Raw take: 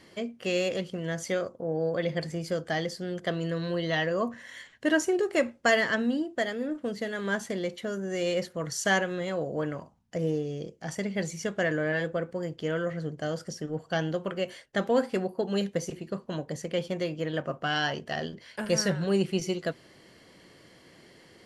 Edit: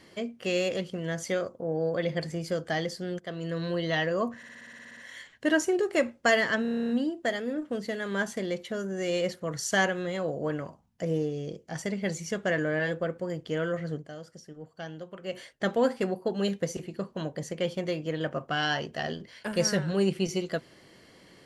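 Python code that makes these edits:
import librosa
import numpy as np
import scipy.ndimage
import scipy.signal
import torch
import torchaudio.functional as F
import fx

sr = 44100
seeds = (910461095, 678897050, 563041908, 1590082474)

y = fx.edit(x, sr, fx.fade_in_from(start_s=3.19, length_s=0.43, floor_db=-12.5),
    fx.stutter(start_s=4.37, slice_s=0.06, count=11),
    fx.stutter(start_s=6.02, slice_s=0.03, count=10),
    fx.fade_down_up(start_s=13.1, length_s=1.38, db=-11.0, fade_s=0.17, curve='qua'), tone=tone)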